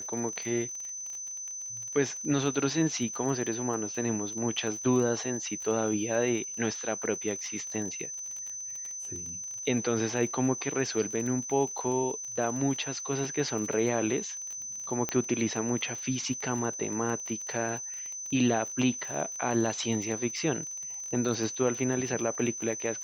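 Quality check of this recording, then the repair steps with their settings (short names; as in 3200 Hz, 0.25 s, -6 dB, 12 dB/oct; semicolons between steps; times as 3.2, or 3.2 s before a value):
crackle 27/s -35 dBFS
tone 6100 Hz -36 dBFS
15.09 pop -14 dBFS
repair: de-click; notch 6100 Hz, Q 30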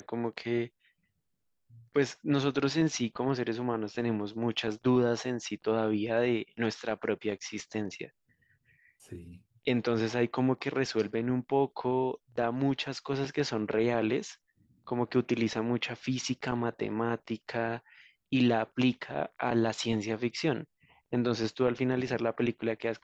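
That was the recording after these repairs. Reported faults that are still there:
none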